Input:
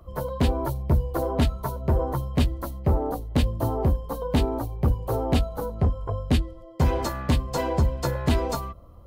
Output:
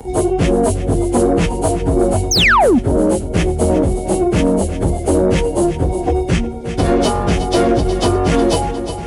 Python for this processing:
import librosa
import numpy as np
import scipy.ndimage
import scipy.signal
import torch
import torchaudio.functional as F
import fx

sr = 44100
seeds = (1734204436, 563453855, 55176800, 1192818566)

p1 = fx.pitch_bins(x, sr, semitones=-6.0)
p2 = scipy.signal.sosfilt(scipy.signal.butter(2, 61.0, 'highpass', fs=sr, output='sos'), p1)
p3 = fx.low_shelf(p2, sr, hz=420.0, db=8.0)
p4 = fx.over_compress(p3, sr, threshold_db=-22.0, ratio=-1.0)
p5 = p3 + F.gain(torch.from_numpy(p4), 0.5).numpy()
p6 = fx.bass_treble(p5, sr, bass_db=-9, treble_db=5)
p7 = p6 + fx.echo_feedback(p6, sr, ms=358, feedback_pct=49, wet_db=-14, dry=0)
p8 = fx.spec_paint(p7, sr, seeds[0], shape='fall', start_s=2.31, length_s=0.48, low_hz=210.0, high_hz=6700.0, level_db=-15.0)
p9 = 10.0 ** (-13.5 / 20.0) * np.tanh(p8 / 10.0 ** (-13.5 / 20.0))
p10 = fx.band_squash(p9, sr, depth_pct=40)
y = F.gain(torch.from_numpy(p10), 8.0).numpy()